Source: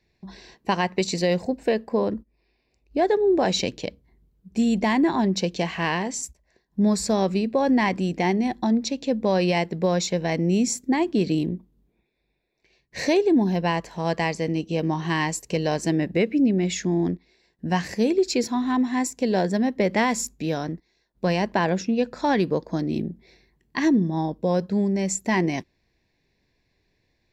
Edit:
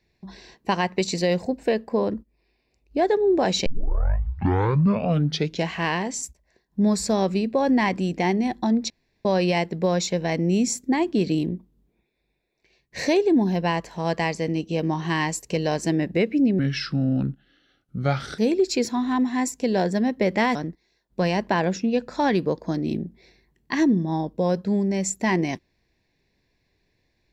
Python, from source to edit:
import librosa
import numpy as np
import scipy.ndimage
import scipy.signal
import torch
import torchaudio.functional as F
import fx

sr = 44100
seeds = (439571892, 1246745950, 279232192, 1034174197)

y = fx.edit(x, sr, fx.tape_start(start_s=3.66, length_s=2.05),
    fx.room_tone_fill(start_s=8.9, length_s=0.35),
    fx.speed_span(start_s=16.59, length_s=1.38, speed=0.77),
    fx.cut(start_s=20.14, length_s=0.46), tone=tone)